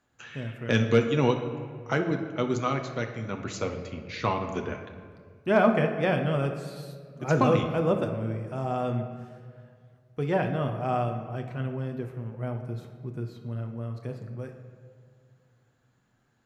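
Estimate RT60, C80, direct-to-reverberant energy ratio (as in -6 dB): 2.0 s, 9.5 dB, 4.0 dB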